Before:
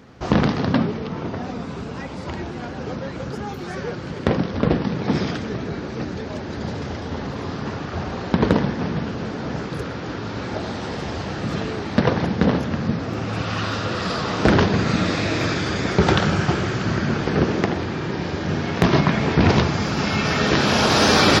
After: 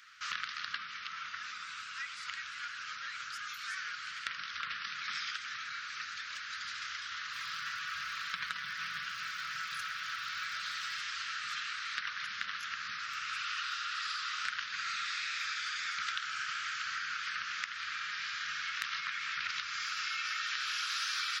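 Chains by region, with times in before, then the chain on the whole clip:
0:07.33–0:10.99: low-shelf EQ 150 Hz +9.5 dB + comb filter 6.1 ms, depth 52% + surface crackle 260 per second −42 dBFS
whole clip: elliptic high-pass filter 1,300 Hz, stop band 40 dB; downward compressor 5 to 1, threshold −35 dBFS

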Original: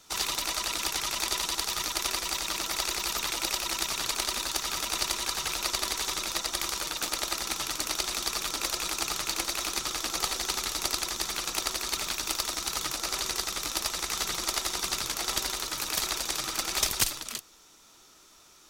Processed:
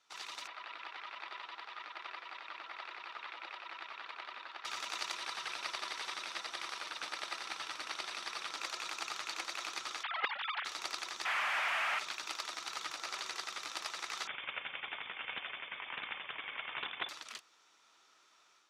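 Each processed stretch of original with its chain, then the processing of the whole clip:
0:00.47–0:04.65: high-pass filter 620 Hz 6 dB per octave + high-frequency loss of the air 410 metres
0:05.16–0:08.53: variable-slope delta modulation 64 kbit/s + parametric band 6,900 Hz −7.5 dB 0.2 octaves
0:10.03–0:10.65: three sine waves on the formant tracks + highs frequency-modulated by the lows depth 0.68 ms
0:11.25–0:11.99: linear delta modulator 16 kbit/s, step −27.5 dBFS + Butterworth high-pass 570 Hz 96 dB per octave + log-companded quantiser 2 bits
0:14.27–0:17.09: voice inversion scrambler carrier 3,500 Hz + highs frequency-modulated by the lows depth 0.13 ms
whole clip: low-pass filter 1,700 Hz 12 dB per octave; first difference; automatic gain control gain up to 6.5 dB; level +4 dB

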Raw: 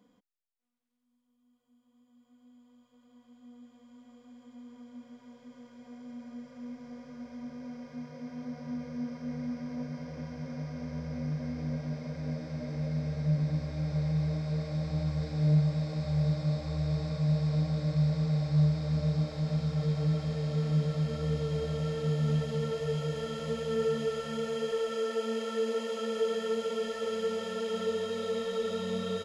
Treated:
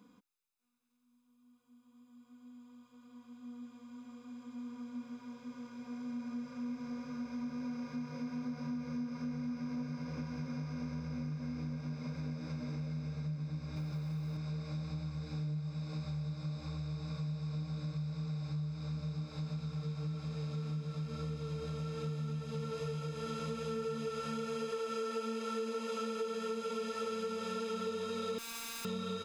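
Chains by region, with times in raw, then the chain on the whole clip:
0:13.76–0:14.37: mu-law and A-law mismatch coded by mu + high-pass filter 91 Hz
0:28.38–0:28.85: wrap-around overflow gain 37.5 dB + phases set to zero 230 Hz
whole clip: comb filter 0.8 ms, depth 60%; downward compressor, threshold −38 dBFS; low-shelf EQ 89 Hz −11.5 dB; level +3.5 dB

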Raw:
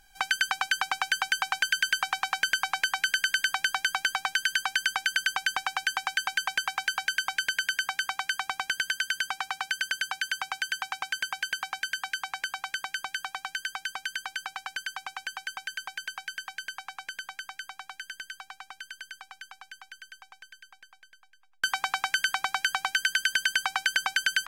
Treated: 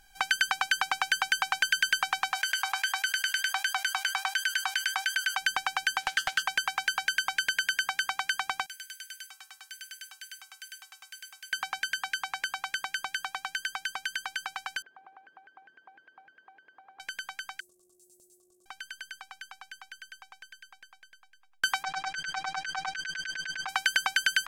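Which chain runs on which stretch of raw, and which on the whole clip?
0:02.32–0:05.37: flanger 1.4 Hz, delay 3.8 ms, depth 2.7 ms, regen +70% + linear-phase brick-wall high-pass 660 Hz + envelope flattener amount 50%
0:06.00–0:06.43: high-pass filter 90 Hz 6 dB per octave + highs frequency-modulated by the lows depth 0.29 ms
0:08.66–0:11.53: first-order pre-emphasis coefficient 0.9 + notch filter 980 Hz, Q 8.2 + tuned comb filter 220 Hz, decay 0.3 s
0:14.82–0:17.00: converter with a step at zero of −35 dBFS + four-pole ladder band-pass 450 Hz, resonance 30%
0:17.60–0:18.66: Chebyshev band-stop filter 340–8,100 Hz, order 3 + ring modulation 360 Hz + highs frequency-modulated by the lows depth 0.26 ms
0:21.83–0:23.69: comb filter 6.7 ms, depth 98% + compressor whose output falls as the input rises −32 dBFS + high-frequency loss of the air 120 metres
whole clip: no processing

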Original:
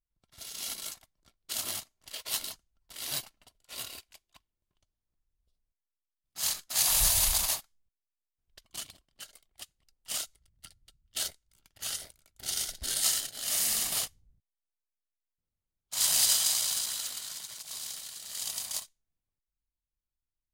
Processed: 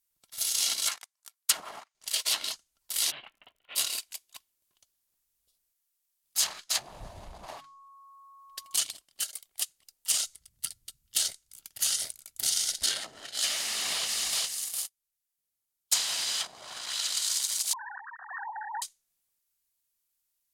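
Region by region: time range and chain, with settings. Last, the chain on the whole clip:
0:00.87–0:01.95: high-pass filter 800 Hz 24 dB per octave + leveller curve on the samples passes 3 + parametric band 3,700 Hz −5 dB 1.2 octaves
0:03.10–0:03.75: Butterworth low-pass 3,100 Hz 48 dB per octave + downward compressor 5 to 1, threshold −47 dBFS + surface crackle 58 per second −70 dBFS
0:07.55–0:08.76: mains-hum notches 50/100/150/200/250/300 Hz + comb filter 7.1 ms, depth 33% + steady tone 1,100 Hz −56 dBFS
0:10.11–0:12.70: bass and treble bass +8 dB, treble +1 dB + downward compressor 3 to 1, threshold −36 dBFS
0:13.44–0:16.41: repeating echo 407 ms, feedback 22%, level −15 dB + downward compressor, threshold −37 dBFS + leveller curve on the samples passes 3
0:17.73–0:18.82: three sine waves on the formant tracks + linear-phase brick-wall low-pass 1,900 Hz
whole clip: treble cut that deepens with the level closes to 420 Hz, closed at −23 dBFS; RIAA equalisation recording; level +5 dB

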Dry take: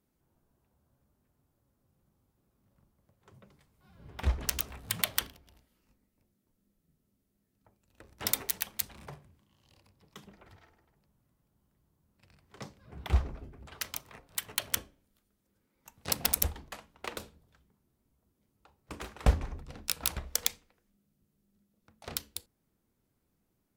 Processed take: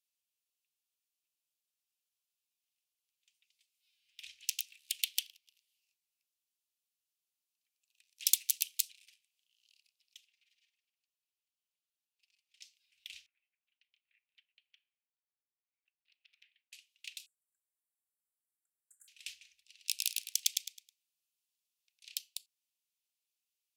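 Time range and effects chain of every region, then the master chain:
0:08.16–0:08.92: high-shelf EQ 5,000 Hz +10 dB + highs frequency-modulated by the lows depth 0.45 ms
0:10.17–0:12.61: lower of the sound and its delayed copy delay 4.3 ms + high-shelf EQ 3,600 Hz −6.5 dB
0:13.26–0:16.73: high-frequency loss of the air 340 metres + LFO wah 1.3 Hz 530–2,000 Hz, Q 2.8
0:17.26–0:19.08: Chebyshev band-stop filter 1,600–7,400 Hz, order 5 + highs frequency-modulated by the lows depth 0.11 ms
0:19.68–0:22.09: low-shelf EQ 170 Hz −12 dB + repeating echo 106 ms, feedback 30%, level −3 dB
whole clip: elliptic high-pass filter 2,600 Hz, stop band 60 dB; high-shelf EQ 11,000 Hz −7.5 dB

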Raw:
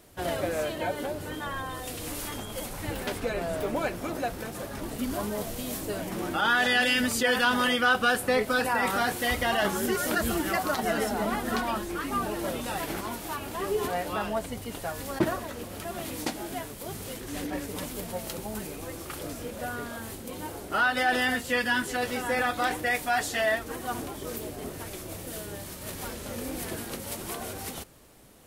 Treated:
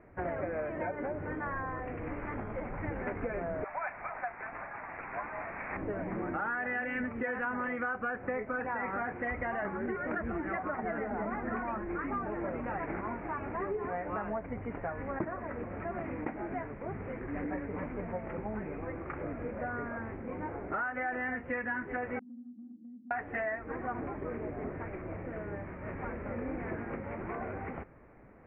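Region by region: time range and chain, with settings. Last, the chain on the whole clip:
0:03.64–0:05.77: Butterworth high-pass 690 Hz 48 dB per octave + bad sample-rate conversion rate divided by 8×, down none, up filtered
0:22.19–0:23.11: flat-topped band-pass 230 Hz, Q 7 + downward compressor 3 to 1, threshold −46 dBFS
whole clip: Butterworth low-pass 2,300 Hz 72 dB per octave; downward compressor, threshold −32 dBFS

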